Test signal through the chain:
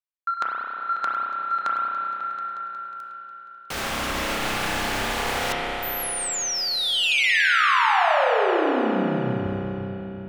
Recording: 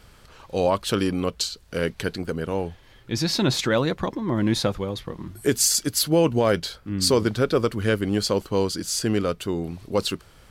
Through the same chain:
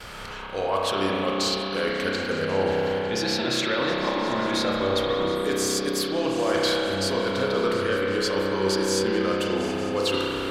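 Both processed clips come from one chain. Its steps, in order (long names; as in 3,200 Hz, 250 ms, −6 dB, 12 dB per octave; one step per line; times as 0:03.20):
noise gate with hold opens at −43 dBFS
hum removal 165 Hz, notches 35
dynamic equaliser 140 Hz, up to −5 dB, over −39 dBFS, Q 1
brickwall limiter −15 dBFS
reversed playback
downward compressor 8 to 1, threshold −38 dBFS
reversed playback
mid-hump overdrive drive 12 dB, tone 4,300 Hz, clips at −19 dBFS
echo whose low-pass opens from repeat to repeat 181 ms, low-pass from 200 Hz, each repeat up 2 octaves, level −6 dB
spring reverb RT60 3.6 s, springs 31 ms, chirp 70 ms, DRR −3.5 dB
level +9 dB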